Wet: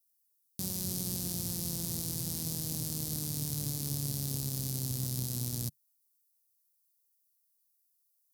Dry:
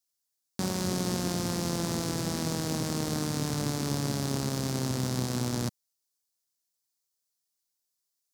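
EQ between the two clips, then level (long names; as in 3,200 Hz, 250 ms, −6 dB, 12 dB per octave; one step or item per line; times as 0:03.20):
drawn EQ curve 140 Hz 0 dB, 210 Hz −7 dB, 1,400 Hz −17 dB, 4,000 Hz −2 dB, 7,200 Hz +1 dB, 12,000 Hz +13 dB
−3.5 dB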